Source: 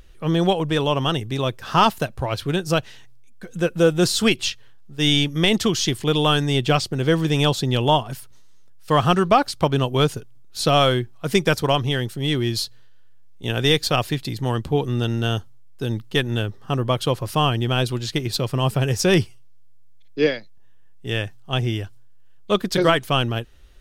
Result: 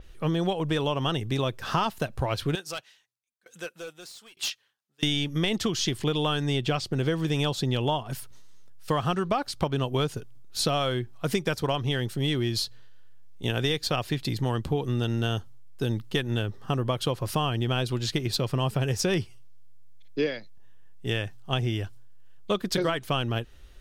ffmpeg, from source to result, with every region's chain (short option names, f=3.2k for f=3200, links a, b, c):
-filter_complex "[0:a]asettb=1/sr,asplit=3[a][b][c];[a]atrim=end=2.554[d];[b]atrim=start=2.55:end=5.03,asetpts=PTS-STARTPTS,afade=t=in:d=0.004:c=qsin,afade=t=out:st=2.476:d=0.004:c=qsin,highpass=f=1.5k:p=1,asoftclip=type=hard:threshold=-22.5dB,aeval=exprs='val(0)*pow(10,-27*if(lt(mod(1.1*n/s,1),2*abs(1.1)/1000),1-mod(1.1*n/s,1)/(2*abs(1.1)/1000),(mod(1.1*n/s,1)-2*abs(1.1)/1000)/(1-2*abs(1.1)/1000))/20)':c=same[e];[c]atrim=start=5.026[f];[d][e]acrossfade=d=0.004:c1=hsin:c2=qsin[g];[g][f]acrossfade=d=0.004:c1=qsin:c2=hsin,acompressor=threshold=-23dB:ratio=6,adynamicequalizer=threshold=0.00708:dfrequency=6400:dqfactor=0.7:tfrequency=6400:tqfactor=0.7:attack=5:release=100:ratio=0.375:range=2.5:mode=cutabove:tftype=highshelf"